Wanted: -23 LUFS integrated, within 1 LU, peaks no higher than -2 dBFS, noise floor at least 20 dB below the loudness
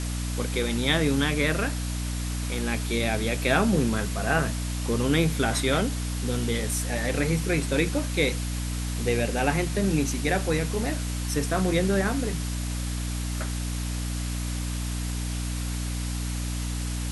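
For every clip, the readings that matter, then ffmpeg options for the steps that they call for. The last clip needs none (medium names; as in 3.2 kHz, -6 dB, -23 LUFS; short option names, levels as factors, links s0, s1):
hum 60 Hz; highest harmonic 300 Hz; hum level -27 dBFS; noise floor -30 dBFS; noise floor target -47 dBFS; loudness -27.0 LUFS; peak level -8.0 dBFS; loudness target -23.0 LUFS
-> -af "bandreject=f=60:t=h:w=4,bandreject=f=120:t=h:w=4,bandreject=f=180:t=h:w=4,bandreject=f=240:t=h:w=4,bandreject=f=300:t=h:w=4"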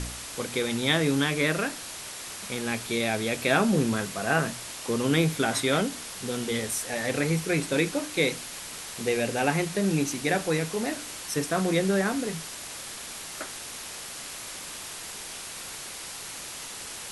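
hum not found; noise floor -39 dBFS; noise floor target -48 dBFS
-> -af "afftdn=nr=9:nf=-39"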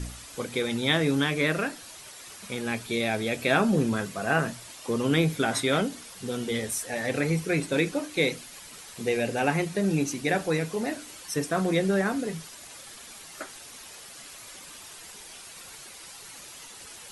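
noise floor -46 dBFS; noise floor target -47 dBFS
-> -af "afftdn=nr=6:nf=-46"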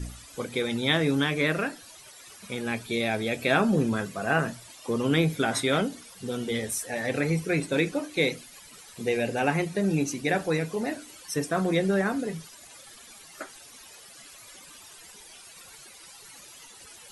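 noise floor -49 dBFS; loudness -27.0 LUFS; peak level -8.5 dBFS; loudness target -23.0 LUFS
-> -af "volume=1.58"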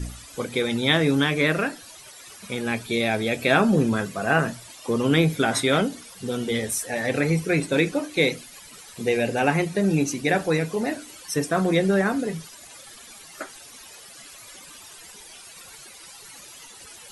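loudness -23.0 LUFS; peak level -4.5 dBFS; noise floor -45 dBFS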